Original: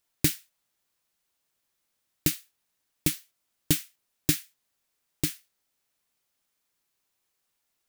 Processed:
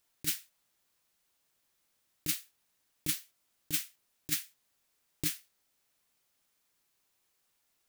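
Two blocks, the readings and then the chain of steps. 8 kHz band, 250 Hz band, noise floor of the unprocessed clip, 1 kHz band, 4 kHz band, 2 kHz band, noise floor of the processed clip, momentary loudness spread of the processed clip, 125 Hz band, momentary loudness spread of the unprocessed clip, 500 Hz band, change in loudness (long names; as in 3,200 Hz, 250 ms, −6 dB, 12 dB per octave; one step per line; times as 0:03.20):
−5.0 dB, −13.5 dB, −79 dBFS, −7.5 dB, −5.0 dB, −5.5 dB, −77 dBFS, 11 LU, −14.0 dB, 12 LU, −15.0 dB, −6.0 dB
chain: compressor whose output falls as the input rises −27 dBFS, ratio −0.5
level −2.5 dB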